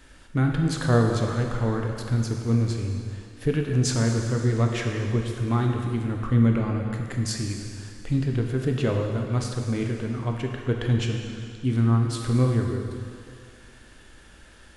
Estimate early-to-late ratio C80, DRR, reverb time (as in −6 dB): 4.5 dB, 1.5 dB, 2.3 s